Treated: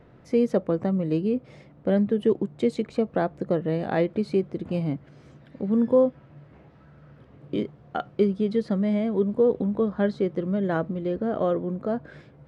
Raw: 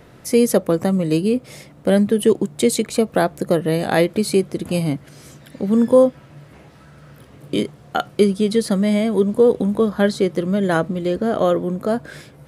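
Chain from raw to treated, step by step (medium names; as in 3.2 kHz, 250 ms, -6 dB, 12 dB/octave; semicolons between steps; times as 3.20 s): tape spacing loss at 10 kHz 29 dB; trim -5.5 dB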